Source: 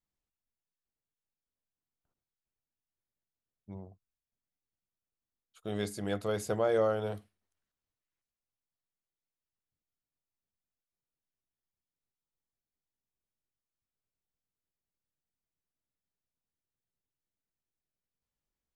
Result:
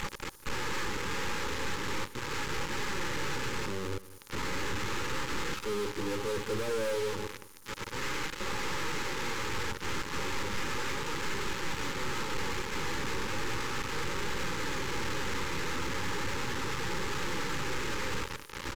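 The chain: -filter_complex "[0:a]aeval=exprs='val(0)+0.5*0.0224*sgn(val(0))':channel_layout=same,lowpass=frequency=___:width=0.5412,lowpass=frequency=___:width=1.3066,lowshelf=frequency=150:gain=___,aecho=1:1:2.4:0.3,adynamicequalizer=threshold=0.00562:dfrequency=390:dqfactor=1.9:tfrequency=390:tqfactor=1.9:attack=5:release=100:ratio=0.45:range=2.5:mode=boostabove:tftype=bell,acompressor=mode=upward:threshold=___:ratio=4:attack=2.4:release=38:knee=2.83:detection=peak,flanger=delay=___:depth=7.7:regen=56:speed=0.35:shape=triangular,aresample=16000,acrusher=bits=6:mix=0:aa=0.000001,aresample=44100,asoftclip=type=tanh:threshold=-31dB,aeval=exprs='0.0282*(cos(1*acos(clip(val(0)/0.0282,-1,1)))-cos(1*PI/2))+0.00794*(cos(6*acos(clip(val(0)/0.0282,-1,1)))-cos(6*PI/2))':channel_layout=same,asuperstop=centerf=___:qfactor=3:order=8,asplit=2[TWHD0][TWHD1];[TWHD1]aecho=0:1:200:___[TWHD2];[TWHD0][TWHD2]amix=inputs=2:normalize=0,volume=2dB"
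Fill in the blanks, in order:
2.2k, 2.2k, -6, -36dB, 4.7, 680, 0.141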